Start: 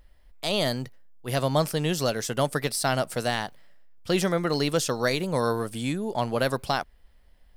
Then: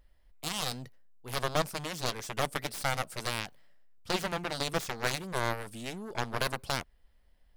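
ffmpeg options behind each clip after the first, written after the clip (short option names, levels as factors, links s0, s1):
-af "aeval=exprs='0.316*(cos(1*acos(clip(val(0)/0.316,-1,1)))-cos(1*PI/2))+0.0398*(cos(4*acos(clip(val(0)/0.316,-1,1)))-cos(4*PI/2))+0.0891*(cos(7*acos(clip(val(0)/0.316,-1,1)))-cos(7*PI/2))':c=same,volume=0.447"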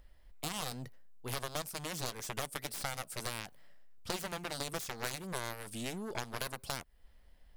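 -filter_complex "[0:a]acrossover=split=2400|6800[s0][s1][s2];[s0]acompressor=threshold=0.00794:ratio=4[s3];[s1]acompressor=threshold=0.00316:ratio=4[s4];[s2]acompressor=threshold=0.00501:ratio=4[s5];[s3][s4][s5]amix=inputs=3:normalize=0,volume=1.58"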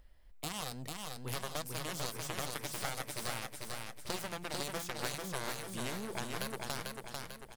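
-af "aecho=1:1:445|890|1335|1780|2225|2670|3115:0.668|0.334|0.167|0.0835|0.0418|0.0209|0.0104,volume=0.841"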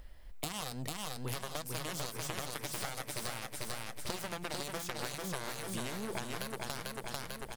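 -af "acompressor=threshold=0.00631:ratio=6,volume=2.82"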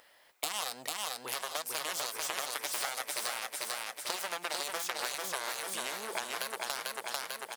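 -af "highpass=620,volume=1.88"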